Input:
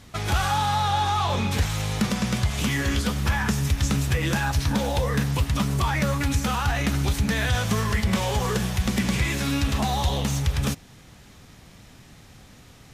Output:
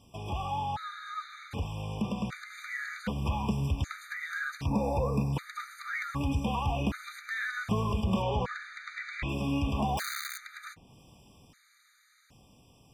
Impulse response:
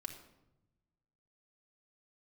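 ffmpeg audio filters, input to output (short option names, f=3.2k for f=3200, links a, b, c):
-filter_complex "[0:a]acrossover=split=3000[a][b];[b]acompressor=threshold=-48dB:ratio=6[c];[a][c]amix=inputs=2:normalize=0,asettb=1/sr,asplit=3[d][e][f];[d]atrim=end=4.664[g];[e]atrim=start=4.66:end=5.33,asetpts=PTS-STARTPTS,afade=t=in:d=0.004:c=qsin,afade=t=out:st=0.666:d=0.004:c=qsin,asuperstop=centerf=3100:order=12:qfactor=3.2[h];[f]atrim=start=5.326[i];[g][h]acrossfade=d=0.004:c1=hsin:c2=qsin[j];[j][i]acrossfade=d=0.004:c1=qsin:c2=hsin,asettb=1/sr,asplit=3[k][l][m];[k]atrim=end=9.974[n];[l]atrim=start=9.97:end=10.38,asetpts=PTS-STARTPTS,afade=t=in:d=0.004:c=qsin,afade=t=out:st=0.406:d=0.004:c=qsin,aeval=exprs='(mod(12.6*val(0)+1,2)-1)/12.6':c=same[o];[m]atrim=start=10.376[p];[n][o]acrossfade=d=0.004:c1=hsin:c2=qsin[q];[q][p]acrossfade=d=0.004:c1=qsin:c2=hsin,lowshelf=f=92:g=-6,asettb=1/sr,asplit=3[r][s][t];[r]atrim=end=8.224[u];[s]atrim=start=8.22:end=9.29,asetpts=PTS-STARTPTS,afade=t=in:d=0.004:c=qsin,afade=t=out:st=1.066:d=0.004:c=qsin,lowpass=4.8k[v];[t]atrim=start=9.286[w];[u][v]acrossfade=d=0.004:c1=hsin:c2=qsin[x];[x][w]acrossfade=d=0.004:c1=qsin:c2=hsin,dynaudnorm=f=400:g=13:m=5dB,afftfilt=real='re*gt(sin(2*PI*0.65*pts/sr)*(1-2*mod(floor(b*sr/1024/1200),2)),0)':imag='im*gt(sin(2*PI*0.65*pts/sr)*(1-2*mod(floor(b*sr/1024/1200),2)),0)':win_size=1024:overlap=0.75,volume=-8dB"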